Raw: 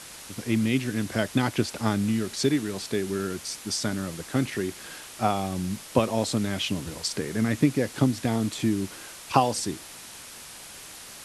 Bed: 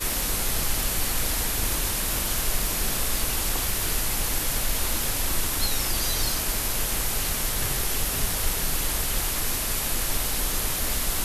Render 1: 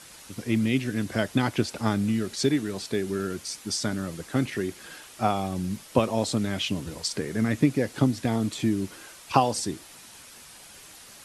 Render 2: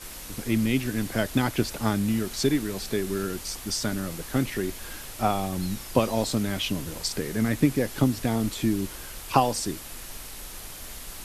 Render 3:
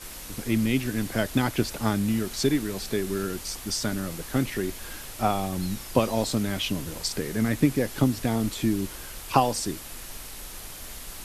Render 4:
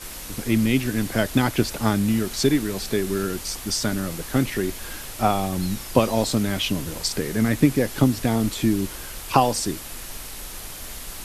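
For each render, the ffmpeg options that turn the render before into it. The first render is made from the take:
-af "afftdn=nr=6:nf=-44"
-filter_complex "[1:a]volume=-14.5dB[a];[0:a][a]amix=inputs=2:normalize=0"
-af anull
-af "volume=4dB,alimiter=limit=-2dB:level=0:latency=1"

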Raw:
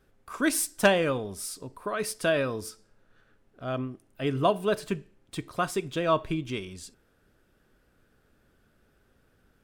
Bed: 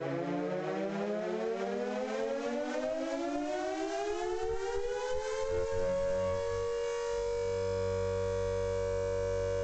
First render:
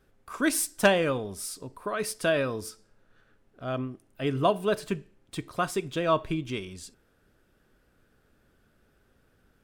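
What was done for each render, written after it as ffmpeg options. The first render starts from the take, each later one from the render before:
-af anull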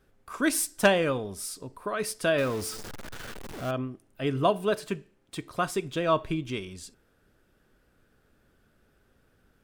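-filter_complex "[0:a]asettb=1/sr,asplit=3[a][b][c];[a]atrim=end=2.384[d];[b]atrim=start=2.38:end=3.71,asetpts=PTS-STARTPTS,afade=t=in:d=0.004:c=qsin,afade=t=out:st=1.326:d=0.004:c=qsin,aeval=exprs='val(0)+0.5*0.02*sgn(val(0))':c=same[e];[c]atrim=start=3.706[f];[d][e]acrossfade=d=0.004:c1=hsin:c2=qsin[g];[g][f]acrossfade=d=0.004:c1=qsin:c2=hsin,asettb=1/sr,asplit=3[h][i][j];[h]atrim=end=4.714[k];[i]atrim=start=4.71:end=5.49,asetpts=PTS-STARTPTS,afade=t=in:d=0.004:c=qsin,afade=t=out:st=0.776:d=0.004:c=qsin,lowshelf=f=120:g=-8.5[l];[j]atrim=start=5.486[m];[k][l]acrossfade=d=0.004:c1=hsin:c2=qsin[n];[n][m]acrossfade=d=0.004:c1=qsin:c2=hsin"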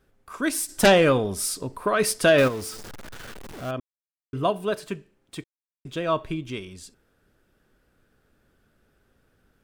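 -filter_complex "[0:a]asplit=3[a][b][c];[a]afade=t=out:st=0.68:d=0.02[d];[b]aeval=exprs='0.316*sin(PI/2*1.78*val(0)/0.316)':c=same,afade=t=in:st=0.68:d=0.02,afade=t=out:st=2.47:d=0.02[e];[c]afade=t=in:st=2.47:d=0.02[f];[d][e][f]amix=inputs=3:normalize=0,asplit=5[g][h][i][j][k];[g]atrim=end=3.8,asetpts=PTS-STARTPTS,afade=t=out:st=3.796:d=0.004:c=hsin[l];[h]atrim=start=3.8:end=4.33,asetpts=PTS-STARTPTS,volume=0[m];[i]atrim=start=4.33:end=5.44,asetpts=PTS-STARTPTS,afade=t=in:d=0.004:c=hsin,afade=t=out:st=1.106:d=0.004:c=hsin[n];[j]atrim=start=5.44:end=5.85,asetpts=PTS-STARTPTS,volume=0[o];[k]atrim=start=5.85,asetpts=PTS-STARTPTS,afade=t=in:d=0.004:c=hsin[p];[l][m][n][o][p]concat=n=5:v=0:a=1"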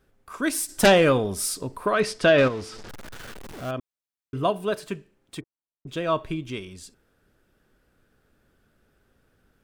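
-filter_complex "[0:a]asettb=1/sr,asplit=3[a][b][c];[a]atrim=end=2.004[d];[b]atrim=start=2:end=2.89,asetpts=PTS-STARTPTS,afade=t=in:d=0.004:c=qsin,afade=t=out:st=0.886:d=0.004:c=qsin,lowpass=5k[e];[c]atrim=start=2.886[f];[d][e]acrossfade=d=0.004:c1=hsin:c2=qsin[g];[g][f]acrossfade=d=0.004:c1=qsin:c2=hsin,asplit=3[h][i][j];[h]afade=t=out:st=5.39:d=0.02[k];[i]lowpass=f=1.2k:w=0.5412,lowpass=f=1.2k:w=1.3066,afade=t=in:st=5.39:d=0.02,afade=t=out:st=5.87:d=0.02[l];[j]afade=t=in:st=5.87:d=0.02[m];[k][l][m]amix=inputs=3:normalize=0"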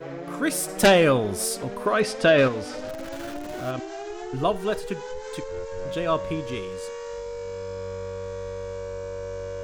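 -filter_complex "[1:a]volume=-0.5dB[a];[0:a][a]amix=inputs=2:normalize=0"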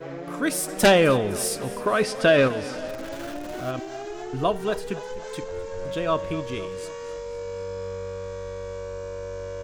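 -af "aecho=1:1:256|512|768|1024|1280:0.126|0.0743|0.0438|0.0259|0.0153"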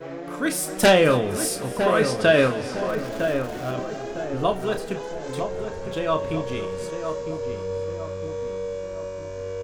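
-filter_complex "[0:a]asplit=2[a][b];[b]adelay=32,volume=-8dB[c];[a][c]amix=inputs=2:normalize=0,asplit=2[d][e];[e]adelay=957,lowpass=f=1.4k:p=1,volume=-6.5dB,asplit=2[f][g];[g]adelay=957,lowpass=f=1.4k:p=1,volume=0.47,asplit=2[h][i];[i]adelay=957,lowpass=f=1.4k:p=1,volume=0.47,asplit=2[j][k];[k]adelay=957,lowpass=f=1.4k:p=1,volume=0.47,asplit=2[l][m];[m]adelay=957,lowpass=f=1.4k:p=1,volume=0.47,asplit=2[n][o];[o]adelay=957,lowpass=f=1.4k:p=1,volume=0.47[p];[d][f][h][j][l][n][p]amix=inputs=7:normalize=0"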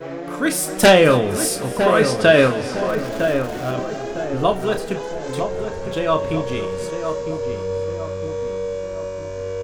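-af "volume=4.5dB"

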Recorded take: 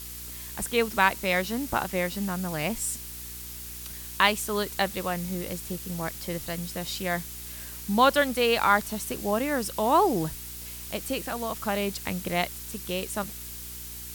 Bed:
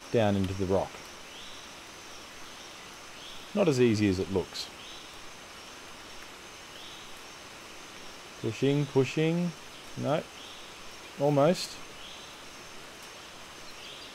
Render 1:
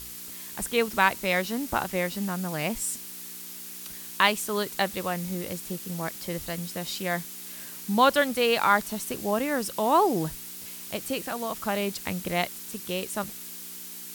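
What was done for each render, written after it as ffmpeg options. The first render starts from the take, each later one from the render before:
-af "bandreject=f=60:t=h:w=4,bandreject=f=120:t=h:w=4"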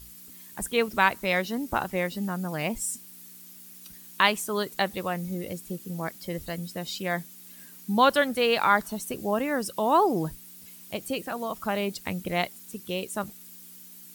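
-af "afftdn=nr=11:nf=-41"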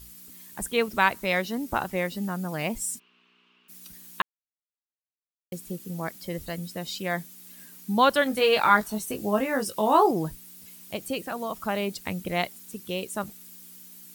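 -filter_complex "[0:a]asplit=3[a][b][c];[a]afade=t=out:st=2.98:d=0.02[d];[b]highpass=f=280:w=0.5412,highpass=f=280:w=1.3066,equalizer=f=310:t=q:w=4:g=-9,equalizer=f=560:t=q:w=4:g=-5,equalizer=f=790:t=q:w=4:g=-7,equalizer=f=1.1k:t=q:w=4:g=6,equalizer=f=1.9k:t=q:w=4:g=-7,equalizer=f=2.8k:t=q:w=4:g=10,lowpass=f=2.8k:w=0.5412,lowpass=f=2.8k:w=1.3066,afade=t=in:st=2.98:d=0.02,afade=t=out:st=3.68:d=0.02[e];[c]afade=t=in:st=3.68:d=0.02[f];[d][e][f]amix=inputs=3:normalize=0,asettb=1/sr,asplit=3[g][h][i];[g]atrim=end=8.244[j];[h]atrim=start=8.24:end=10.11,asetpts=PTS-STARTPTS,afade=t=in:d=0.004:c=qsin,afade=t=out:st=1.866:d=0.004:c=qsin,asplit=2[k][l];[l]adelay=19,volume=-4dB[m];[k][m]amix=inputs=2:normalize=0,atrim=end_sample=82467[n];[i]atrim=start=10.106[o];[j][n]acrossfade=d=0.004:c1=hsin:c2=qsin[p];[p][o]acrossfade=d=0.004:c1=qsin:c2=hsin,asplit=3[q][r][s];[q]atrim=end=4.22,asetpts=PTS-STARTPTS,afade=t=out:st=4.216:d=0.004:c=hsin[t];[r]atrim=start=4.22:end=5.52,asetpts=PTS-STARTPTS,volume=0[u];[s]atrim=start=5.52,asetpts=PTS-STARTPTS,afade=t=in:d=0.004:c=hsin[v];[t][u][v]concat=n=3:v=0:a=1"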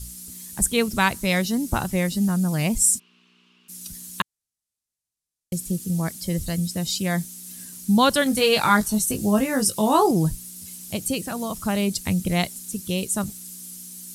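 -af "lowpass=f=12k:w=0.5412,lowpass=f=12k:w=1.3066,bass=f=250:g=14,treble=f=4k:g=14"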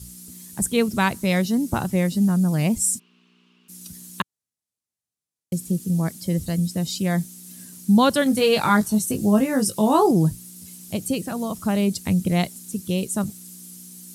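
-af "highpass=100,tiltshelf=f=760:g=3.5"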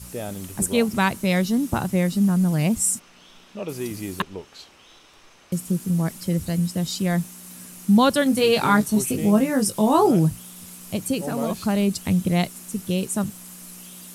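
-filter_complex "[1:a]volume=-6.5dB[a];[0:a][a]amix=inputs=2:normalize=0"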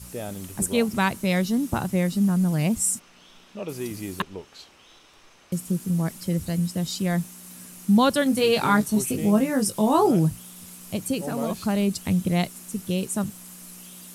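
-af "volume=-2dB"

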